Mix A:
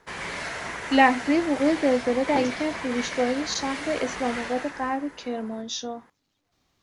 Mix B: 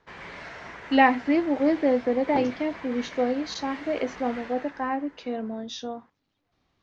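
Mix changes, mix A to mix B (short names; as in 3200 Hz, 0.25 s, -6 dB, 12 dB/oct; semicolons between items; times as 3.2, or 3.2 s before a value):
background -6.5 dB; master: add air absorption 160 m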